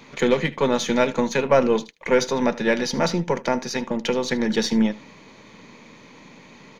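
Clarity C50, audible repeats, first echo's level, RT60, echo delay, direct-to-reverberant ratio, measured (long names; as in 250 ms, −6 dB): no reverb audible, 1, −19.5 dB, no reverb audible, 76 ms, no reverb audible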